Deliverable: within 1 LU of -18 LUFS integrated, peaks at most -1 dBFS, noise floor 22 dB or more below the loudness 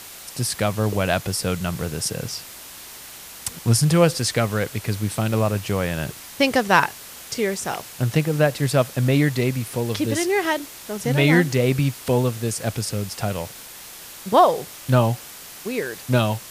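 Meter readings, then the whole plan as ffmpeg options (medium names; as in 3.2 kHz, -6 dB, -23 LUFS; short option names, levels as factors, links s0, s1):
noise floor -40 dBFS; noise floor target -44 dBFS; loudness -22.0 LUFS; peak level -1.5 dBFS; loudness target -18.0 LUFS
-> -af "afftdn=nr=6:nf=-40"
-af "volume=1.58,alimiter=limit=0.891:level=0:latency=1"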